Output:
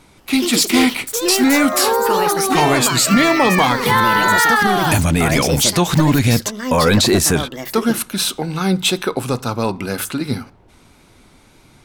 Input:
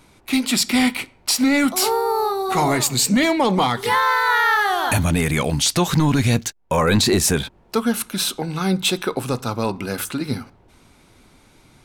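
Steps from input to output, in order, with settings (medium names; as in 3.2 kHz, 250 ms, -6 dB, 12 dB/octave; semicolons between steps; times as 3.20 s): wow and flutter 25 cents; ever faster or slower copies 176 ms, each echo +5 st, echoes 2, each echo -6 dB; trim +3 dB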